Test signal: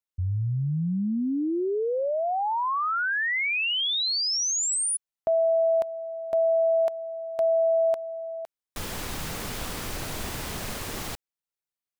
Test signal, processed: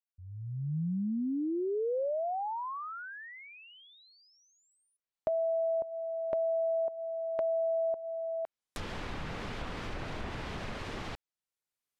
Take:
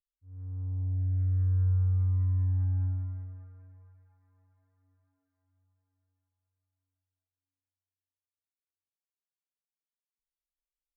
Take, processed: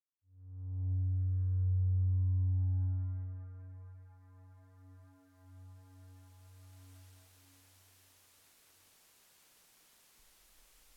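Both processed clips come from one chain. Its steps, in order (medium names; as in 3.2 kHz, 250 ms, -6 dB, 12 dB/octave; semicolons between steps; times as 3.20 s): fade-in on the opening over 2.04 s; recorder AGC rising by 8.8 dB/s, up to +36 dB; low-pass that closes with the level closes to 580 Hz, closed at -23.5 dBFS; trim -4 dB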